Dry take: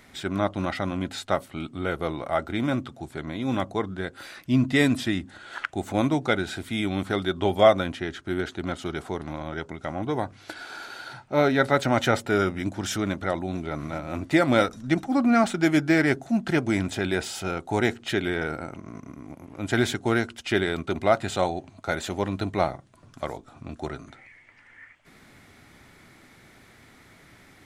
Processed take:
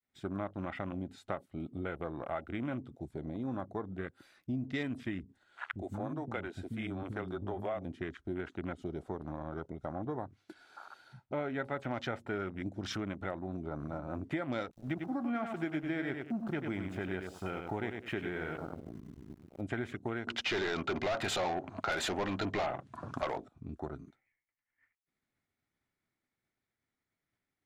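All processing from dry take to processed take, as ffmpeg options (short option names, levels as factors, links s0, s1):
-filter_complex "[0:a]asettb=1/sr,asplit=3[s0][s1][s2];[s0]atrim=end=5.234[s3];[s1]atrim=start=5.23:end=7.85,asetpts=PTS-STARTPTS,afade=t=in:d=0.004:c=qsin,afade=t=out:st=2.616:d=0.004:c=qsin,acompressor=threshold=0.0562:ratio=2:attack=3.2:release=140:knee=1:detection=peak,acrossover=split=260[s4][s5];[s5]adelay=60[s6];[s4][s6]amix=inputs=2:normalize=0,atrim=end_sample=115542[s7];[s2]atrim=start=7.846[s8];[s3][s7]acrossfade=d=0.004:c1=hsin:c2=qsin[s9];[s9][s8]acrossfade=d=0.004:c1=qsin:c2=hsin,asettb=1/sr,asplit=3[s10][s11][s12];[s10]atrim=end=14.714[s13];[s11]atrim=start=14.71:end=19.61,asetpts=PTS-STARTPTS,afade=t=in:d=0.004:c=qsin,afade=t=out:st=4.896:d=0.004:c=qsin,aeval=exprs='val(0)*gte(abs(val(0)),0.0133)':c=same,aecho=1:1:96|192|288:0.473|0.109|0.025,atrim=end_sample=216090[s14];[s12]atrim=start=19.606[s15];[s13][s14]acrossfade=d=0.004:c1=hsin:c2=qsin[s16];[s16][s15]acrossfade=d=0.004:c1=qsin:c2=hsin,asettb=1/sr,asplit=3[s17][s18][s19];[s17]atrim=end=20.274[s20];[s18]atrim=start=20.27:end=23.48,asetpts=PTS-STARTPTS,afade=t=in:d=0.004:c=qsin,afade=t=out:st=3.206:d=0.004:c=qsin,lowshelf=f=180:g=7,asplit=2[s21][s22];[s22]highpass=f=720:p=1,volume=25.1,asoftclip=type=tanh:threshold=0.501[s23];[s21][s23]amix=inputs=2:normalize=0,lowpass=f=4300:p=1,volume=0.501,asoftclip=type=hard:threshold=0.282[s24];[s19]atrim=start=23.476[s25];[s20][s24]acrossfade=d=0.004:c1=hsin:c2=qsin[s26];[s26][s25]acrossfade=d=0.004:c1=qsin:c2=hsin,agate=range=0.0224:threshold=0.00794:ratio=3:detection=peak,afwtdn=0.02,acompressor=threshold=0.0316:ratio=4,volume=0.596"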